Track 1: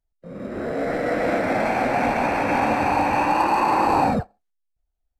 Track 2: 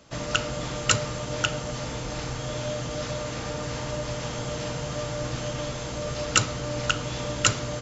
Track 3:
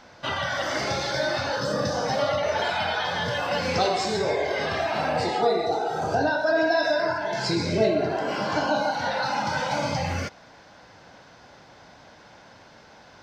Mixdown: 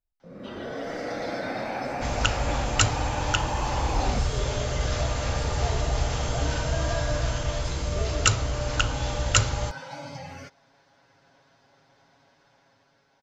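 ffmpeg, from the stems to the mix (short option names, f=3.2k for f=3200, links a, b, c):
-filter_complex "[0:a]equalizer=f=9.5k:t=o:w=0.89:g=-7.5,acompressor=threshold=-24dB:ratio=6,volume=-8dB[a];[1:a]lowshelf=f=110:t=q:w=1.5:g=12,bandreject=f=60:t=h:w=6,bandreject=f=120:t=h:w=6,bandreject=f=180:t=h:w=6,bandreject=f=240:t=h:w=6,bandreject=f=300:t=h:w=6,bandreject=f=360:t=h:w=6,bandreject=f=420:t=h:w=6,bandreject=f=480:t=h:w=6,bandreject=f=540:t=h:w=6,bandreject=f=600:t=h:w=6,adelay=1900,volume=-3dB[b];[2:a]aecho=1:1:7.3:0.9,adelay=200,volume=-19dB[c];[a][b][c]amix=inputs=3:normalize=0,dynaudnorm=f=230:g=9:m=5dB"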